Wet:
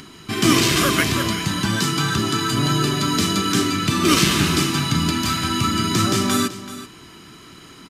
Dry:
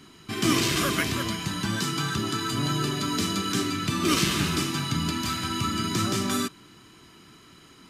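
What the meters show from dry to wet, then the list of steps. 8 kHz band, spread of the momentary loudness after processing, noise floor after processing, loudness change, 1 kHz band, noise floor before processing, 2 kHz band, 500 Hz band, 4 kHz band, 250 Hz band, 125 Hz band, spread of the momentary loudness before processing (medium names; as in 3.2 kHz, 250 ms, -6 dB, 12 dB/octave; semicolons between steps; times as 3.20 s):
+7.0 dB, 6 LU, -44 dBFS, +7.0 dB, +7.0 dB, -52 dBFS, +7.0 dB, +7.0 dB, +7.0 dB, +7.0 dB, +7.5 dB, 6 LU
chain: upward compressor, threshold -45 dBFS; delay 381 ms -14.5 dB; trim +7 dB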